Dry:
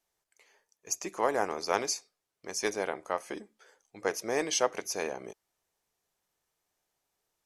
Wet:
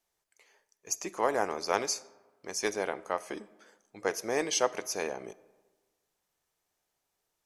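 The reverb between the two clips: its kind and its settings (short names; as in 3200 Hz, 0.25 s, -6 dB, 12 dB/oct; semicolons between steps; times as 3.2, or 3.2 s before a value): digital reverb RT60 1.3 s, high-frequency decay 0.55×, pre-delay 5 ms, DRR 19 dB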